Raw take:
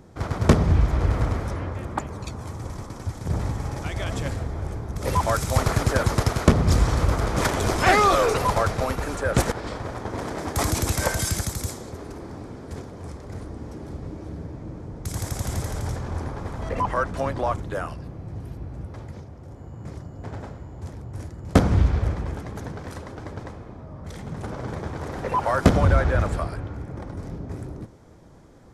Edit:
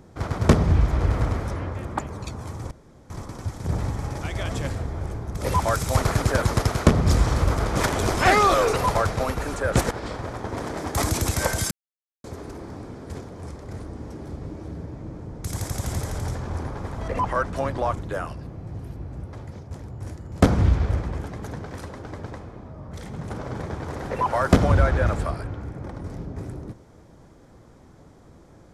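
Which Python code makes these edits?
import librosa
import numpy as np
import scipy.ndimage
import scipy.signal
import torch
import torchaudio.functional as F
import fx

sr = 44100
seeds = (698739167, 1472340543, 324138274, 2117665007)

y = fx.edit(x, sr, fx.insert_room_tone(at_s=2.71, length_s=0.39),
    fx.silence(start_s=11.32, length_s=0.53),
    fx.cut(start_s=19.32, length_s=1.52), tone=tone)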